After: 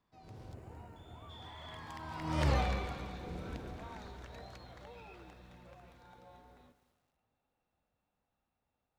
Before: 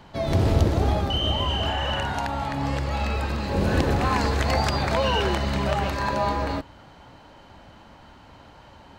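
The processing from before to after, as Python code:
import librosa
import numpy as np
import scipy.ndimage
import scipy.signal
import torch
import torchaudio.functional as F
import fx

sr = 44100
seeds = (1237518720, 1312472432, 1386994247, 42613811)

y = fx.doppler_pass(x, sr, speed_mps=44, closest_m=3.5, pass_at_s=2.5)
y = fx.spec_box(y, sr, start_s=0.54, length_s=0.75, low_hz=3100.0, high_hz=6600.0, gain_db=-12)
y = fx.echo_crushed(y, sr, ms=221, feedback_pct=55, bits=11, wet_db=-12.5)
y = y * 10.0 ** (-1.0 / 20.0)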